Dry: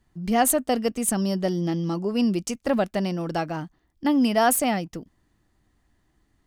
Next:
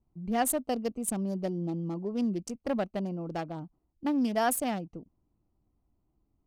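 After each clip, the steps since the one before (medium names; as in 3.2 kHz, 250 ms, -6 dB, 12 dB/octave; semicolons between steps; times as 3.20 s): local Wiener filter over 25 samples; trim -7 dB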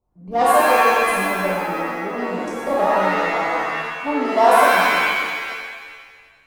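high-order bell 740 Hz +11.5 dB; Chebyshev shaper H 7 -27 dB, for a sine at -6 dBFS; pitch-shifted reverb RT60 1.6 s, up +7 st, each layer -2 dB, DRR -6.5 dB; trim -2.5 dB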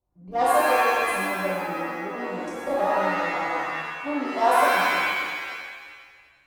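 comb of notches 220 Hz; trim -4.5 dB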